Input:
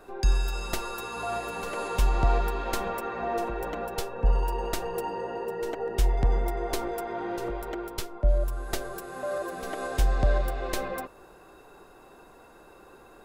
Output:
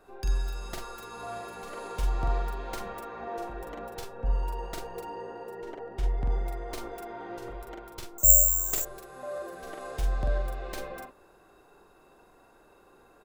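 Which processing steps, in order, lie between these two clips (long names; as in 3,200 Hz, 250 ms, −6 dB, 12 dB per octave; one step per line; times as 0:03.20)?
stylus tracing distortion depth 0.048 ms
0:05.56–0:06.26: low-pass filter 3,000 Hz 6 dB per octave
double-tracking delay 44 ms −4 dB
0:08.18–0:08.85: bad sample-rate conversion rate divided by 6×, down none, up zero stuff
level −8 dB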